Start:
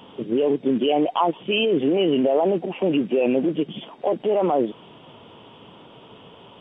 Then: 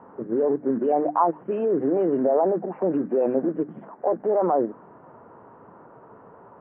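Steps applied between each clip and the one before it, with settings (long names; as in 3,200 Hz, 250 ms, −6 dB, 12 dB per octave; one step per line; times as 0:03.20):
Butterworth low-pass 1,700 Hz 48 dB per octave
low-shelf EQ 470 Hz −6.5 dB
mains-hum notches 50/100/150/200/250/300 Hz
level +2 dB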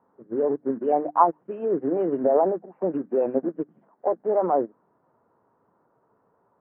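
expander for the loud parts 2.5 to 1, over −32 dBFS
level +4.5 dB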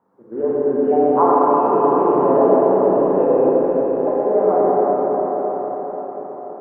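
echo through a band-pass that steps 351 ms, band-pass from 590 Hz, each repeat 0.7 octaves, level −11.5 dB
convolution reverb RT60 5.7 s, pre-delay 31 ms, DRR −9.5 dB
level −1 dB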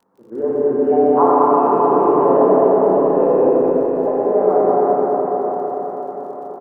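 surface crackle 53 per second −46 dBFS
single-tap delay 206 ms −5.5 dB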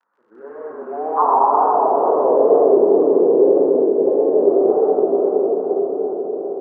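tape wow and flutter 120 cents
echo with a time of its own for lows and highs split 660 Hz, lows 678 ms, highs 127 ms, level −5 dB
band-pass filter sweep 1,500 Hz → 390 Hz, 0:00.49–0:02.98
level +1.5 dB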